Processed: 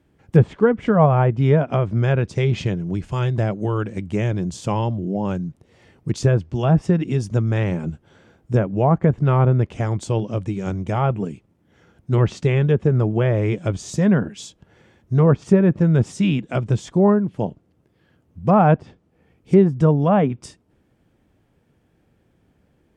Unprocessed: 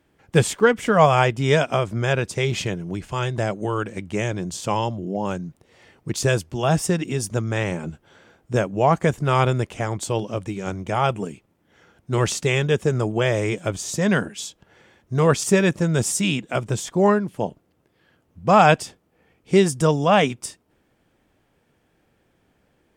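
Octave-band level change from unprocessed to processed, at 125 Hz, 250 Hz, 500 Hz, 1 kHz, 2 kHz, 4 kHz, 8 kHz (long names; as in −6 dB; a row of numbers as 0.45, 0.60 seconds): +6.0, +4.5, 0.0, −3.0, −6.5, −9.0, −11.5 decibels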